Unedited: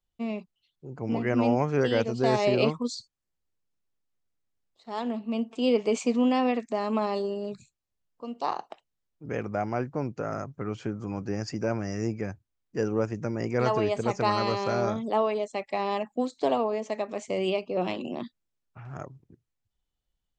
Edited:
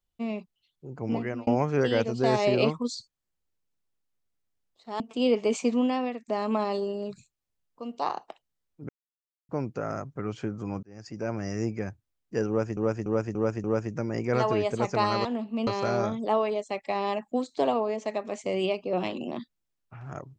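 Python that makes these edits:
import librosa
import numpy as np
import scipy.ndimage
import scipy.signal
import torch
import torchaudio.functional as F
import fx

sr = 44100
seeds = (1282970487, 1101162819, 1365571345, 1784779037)

y = fx.edit(x, sr, fx.fade_out_span(start_s=1.14, length_s=0.33),
    fx.move(start_s=5.0, length_s=0.42, to_s=14.51),
    fx.fade_out_to(start_s=6.11, length_s=0.59, floor_db=-11.5),
    fx.silence(start_s=9.31, length_s=0.6),
    fx.fade_in_span(start_s=11.25, length_s=0.64),
    fx.repeat(start_s=12.9, length_s=0.29, count=5), tone=tone)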